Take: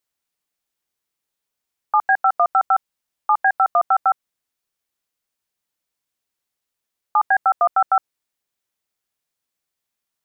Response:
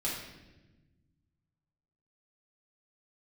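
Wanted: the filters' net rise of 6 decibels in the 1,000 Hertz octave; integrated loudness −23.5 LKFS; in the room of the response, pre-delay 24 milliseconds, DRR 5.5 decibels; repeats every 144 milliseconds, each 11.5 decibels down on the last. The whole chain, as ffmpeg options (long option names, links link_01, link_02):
-filter_complex "[0:a]equalizer=frequency=1000:width_type=o:gain=9,aecho=1:1:144|288|432:0.266|0.0718|0.0194,asplit=2[link_01][link_02];[1:a]atrim=start_sample=2205,adelay=24[link_03];[link_02][link_03]afir=irnorm=-1:irlink=0,volume=-10.5dB[link_04];[link_01][link_04]amix=inputs=2:normalize=0,volume=-11.5dB"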